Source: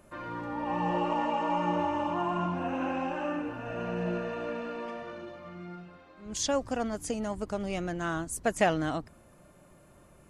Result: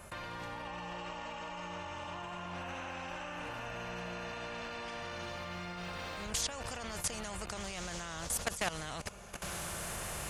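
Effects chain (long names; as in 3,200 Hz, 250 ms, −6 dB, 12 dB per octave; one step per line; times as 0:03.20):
camcorder AGC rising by 14 dB per second
high-pass filter 41 Hz 12 dB per octave
guitar amp tone stack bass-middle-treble 10-0-10
mains-hum notches 60/120 Hz
feedback delay with all-pass diffusion 1,637 ms, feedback 40%, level −15 dB
output level in coarse steps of 18 dB
tilt shelving filter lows +8.5 dB
every bin compressed towards the loudest bin 2 to 1
level +9 dB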